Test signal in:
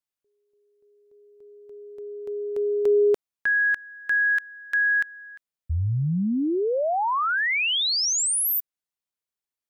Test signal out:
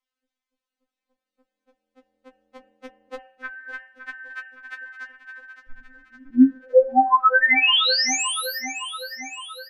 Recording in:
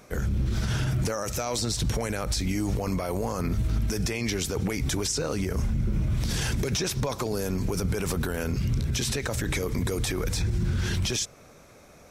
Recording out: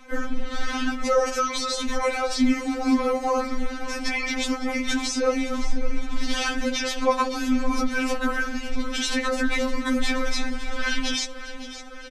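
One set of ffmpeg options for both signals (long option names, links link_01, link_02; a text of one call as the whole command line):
ffmpeg -i in.wav -af "lowpass=1900,bandreject=frequency=79.55:width_type=h:width=4,bandreject=frequency=159.1:width_type=h:width=4,bandreject=frequency=238.65:width_type=h:width=4,bandreject=frequency=318.2:width_type=h:width=4,bandreject=frequency=397.75:width_type=h:width=4,bandreject=frequency=477.3:width_type=h:width=4,bandreject=frequency=556.85:width_type=h:width=4,bandreject=frequency=636.4:width_type=h:width=4,bandreject=frequency=715.95:width_type=h:width=4,bandreject=frequency=795.5:width_type=h:width=4,bandreject=frequency=875.05:width_type=h:width=4,bandreject=frequency=954.6:width_type=h:width=4,bandreject=frequency=1034.15:width_type=h:width=4,bandreject=frequency=1113.7:width_type=h:width=4,bandreject=frequency=1193.25:width_type=h:width=4,bandreject=frequency=1272.8:width_type=h:width=4,bandreject=frequency=1352.35:width_type=h:width=4,bandreject=frequency=1431.9:width_type=h:width=4,bandreject=frequency=1511.45:width_type=h:width=4,bandreject=frequency=1591:width_type=h:width=4,bandreject=frequency=1670.55:width_type=h:width=4,bandreject=frequency=1750.1:width_type=h:width=4,bandreject=frequency=1829.65:width_type=h:width=4,bandreject=frequency=1909.2:width_type=h:width=4,bandreject=frequency=1988.75:width_type=h:width=4,bandreject=frequency=2068.3:width_type=h:width=4,bandreject=frequency=2147.85:width_type=h:width=4,bandreject=frequency=2227.4:width_type=h:width=4,bandreject=frequency=2306.95:width_type=h:width=4,bandreject=frequency=2386.5:width_type=h:width=4,bandreject=frequency=2466.05:width_type=h:width=4,bandreject=frequency=2545.6:width_type=h:width=4,bandreject=frequency=2625.15:width_type=h:width=4,bandreject=frequency=2704.7:width_type=h:width=4,bandreject=frequency=2784.25:width_type=h:width=4,bandreject=frequency=2863.8:width_type=h:width=4,bandreject=frequency=2943.35:width_type=h:width=4,bandreject=frequency=3022.9:width_type=h:width=4,bandreject=frequency=3102.45:width_type=h:width=4,bandreject=frequency=3182:width_type=h:width=4,flanger=delay=4.6:depth=5.1:regen=-46:speed=0.93:shape=triangular,crystalizer=i=5.5:c=0,afreqshift=-24,aecho=1:1:563|1126|1689|2252|2815|3378:0.211|0.125|0.0736|0.0434|0.0256|0.0151,alimiter=level_in=21dB:limit=-1dB:release=50:level=0:latency=1,afftfilt=real='re*3.46*eq(mod(b,12),0)':imag='im*3.46*eq(mod(b,12),0)':win_size=2048:overlap=0.75,volume=-8dB" out.wav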